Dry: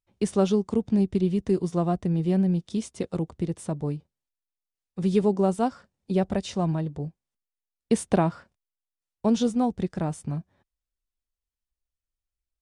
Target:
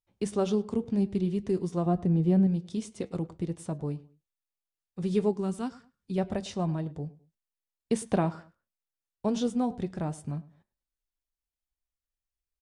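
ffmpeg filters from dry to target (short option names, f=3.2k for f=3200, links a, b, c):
-filter_complex "[0:a]asettb=1/sr,asplit=3[a][b][c];[a]atrim=end=1.864[d];[b]atrim=start=1.86:end=2.47,asetpts=PTS-STARTPTS,afade=t=in:d=0.004:c=qsin,afade=t=out:st=0.606:d=0.004:c=qsin,tiltshelf=f=1.2k:g=4.5[e];[c]atrim=start=2.466[f];[d][e]acrossfade=d=0.004:c1=hsin:c2=qsin[g];[g][f]acrossfade=d=0.004:c1=qsin:c2=hsin,asplit=2[h][i];[i]adelay=104,lowpass=f=2.9k:p=1,volume=-19.5dB,asplit=2[j][k];[k]adelay=104,lowpass=f=2.9k:p=1,volume=0.3[l];[h][j][l]amix=inputs=3:normalize=0,flanger=delay=6.6:depth=1.3:regen=-78:speed=0.86:shape=sinusoidal,asettb=1/sr,asplit=3[m][n][o];[m]atrim=end=5.334[p];[n]atrim=start=5.33:end=6.18,asetpts=PTS-STARTPTS,afade=t=in:d=0.004:c=qsin,afade=t=out:st=0.846:d=0.004:c=qsin,equalizer=f=630:w=1.3:g=-13.5[q];[o]atrim=start=6.176[r];[p][q]acrossfade=d=0.004:c1=hsin:c2=qsin[s];[s][r]acrossfade=d=0.004:c1=qsin:c2=hsin"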